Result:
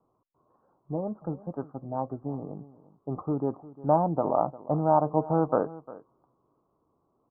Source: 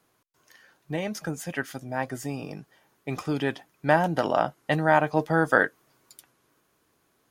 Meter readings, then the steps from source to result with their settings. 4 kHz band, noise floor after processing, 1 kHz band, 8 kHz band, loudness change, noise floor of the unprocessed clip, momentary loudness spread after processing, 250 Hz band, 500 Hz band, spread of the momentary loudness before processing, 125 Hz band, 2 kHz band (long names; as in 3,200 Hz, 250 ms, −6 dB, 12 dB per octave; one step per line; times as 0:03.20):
below −40 dB, −74 dBFS, −1.5 dB, below −35 dB, −2.5 dB, −70 dBFS, 14 LU, −1.0 dB, −1.0 dB, 13 LU, −1.0 dB, below −25 dB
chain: Butterworth low-pass 1,200 Hz 72 dB per octave
on a send: single-tap delay 352 ms −18.5 dB
on the sum: level −1 dB